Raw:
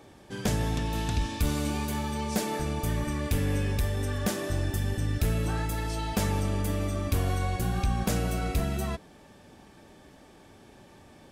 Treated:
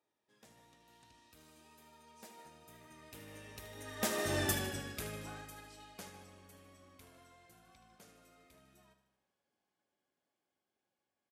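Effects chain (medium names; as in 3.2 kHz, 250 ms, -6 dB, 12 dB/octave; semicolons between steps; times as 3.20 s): Doppler pass-by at 4.46 s, 19 m/s, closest 4.1 m; high-pass 530 Hz 6 dB/octave; on a send: feedback delay 76 ms, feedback 59%, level -11 dB; on the sum: upward expansion 1.5:1, over -55 dBFS; trim +6 dB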